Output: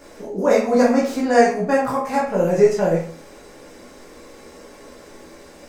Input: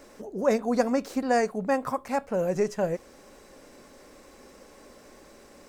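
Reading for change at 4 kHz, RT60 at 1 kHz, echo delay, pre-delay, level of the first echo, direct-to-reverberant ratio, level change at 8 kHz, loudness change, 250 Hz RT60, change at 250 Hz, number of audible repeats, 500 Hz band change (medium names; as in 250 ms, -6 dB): +8.0 dB, 0.50 s, no echo, 12 ms, no echo, -5.5 dB, +7.5 dB, +9.0 dB, 0.50 s, +8.5 dB, no echo, +9.5 dB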